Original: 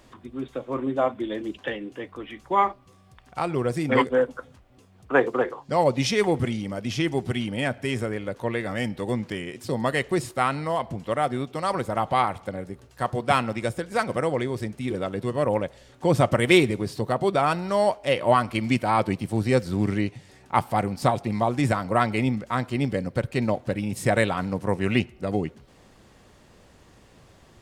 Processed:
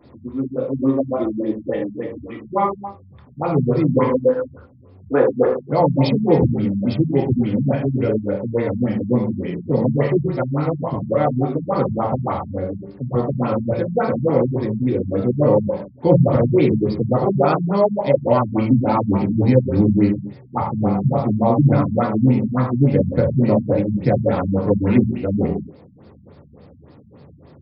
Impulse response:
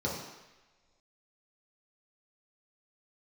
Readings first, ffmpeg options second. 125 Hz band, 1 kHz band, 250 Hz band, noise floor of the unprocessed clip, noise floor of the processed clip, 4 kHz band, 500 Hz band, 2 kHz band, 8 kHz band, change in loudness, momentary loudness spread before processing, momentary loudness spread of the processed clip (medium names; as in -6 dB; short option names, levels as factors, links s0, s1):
+9.5 dB, +1.0 dB, +9.0 dB, -55 dBFS, -46 dBFS, no reading, +6.5 dB, -6.5 dB, under -40 dB, +6.0 dB, 9 LU, 9 LU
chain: -filter_complex "[0:a]alimiter=limit=0.266:level=0:latency=1:release=123[s0];[1:a]atrim=start_sample=2205,afade=t=out:st=0.31:d=0.01,atrim=end_sample=14112[s1];[s0][s1]afir=irnorm=-1:irlink=0,afftfilt=real='re*lt(b*sr/1024,220*pow(5500/220,0.5+0.5*sin(2*PI*3.5*pts/sr)))':imag='im*lt(b*sr/1024,220*pow(5500/220,0.5+0.5*sin(2*PI*3.5*pts/sr)))':win_size=1024:overlap=0.75,volume=0.708"